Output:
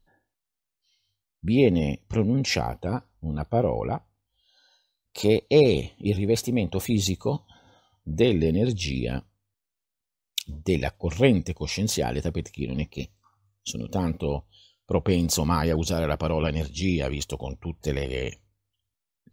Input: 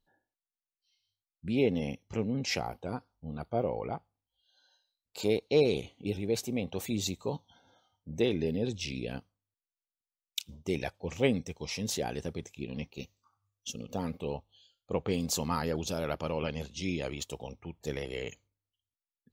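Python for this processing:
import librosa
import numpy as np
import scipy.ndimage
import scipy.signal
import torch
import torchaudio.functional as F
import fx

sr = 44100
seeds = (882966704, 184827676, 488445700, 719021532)

y = fx.low_shelf(x, sr, hz=120.0, db=10.0)
y = y * 10.0 ** (6.5 / 20.0)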